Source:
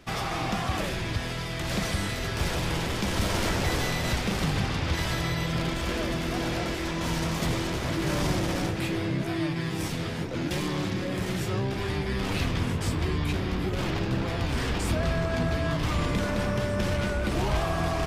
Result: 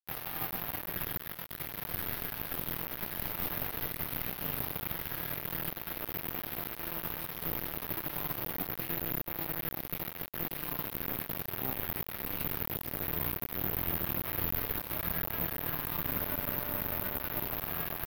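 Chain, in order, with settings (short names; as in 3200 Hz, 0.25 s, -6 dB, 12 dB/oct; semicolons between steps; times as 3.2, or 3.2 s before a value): notch 550 Hz, Q 12; comb 6.7 ms, depth 50%; limiter -21 dBFS, peak gain reduction 6 dB; resonator 87 Hz, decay 1.3 s, harmonics all, mix 80%; requantised 6-bit, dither none; air absorption 220 m; careless resampling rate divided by 3×, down filtered, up zero stuff; gain +1.5 dB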